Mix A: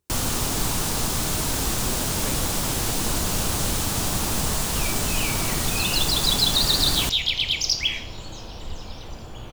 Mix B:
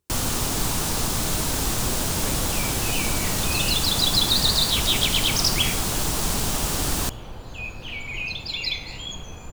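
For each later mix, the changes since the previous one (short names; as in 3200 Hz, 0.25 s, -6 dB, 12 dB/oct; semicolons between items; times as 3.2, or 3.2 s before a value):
second sound: entry -2.25 s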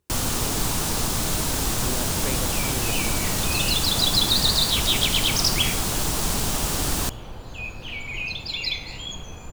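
speech +4.5 dB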